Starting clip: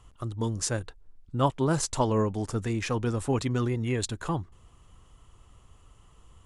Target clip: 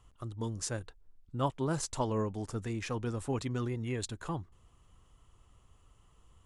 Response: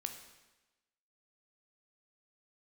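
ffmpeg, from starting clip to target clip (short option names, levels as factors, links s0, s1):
-af "volume=0.447"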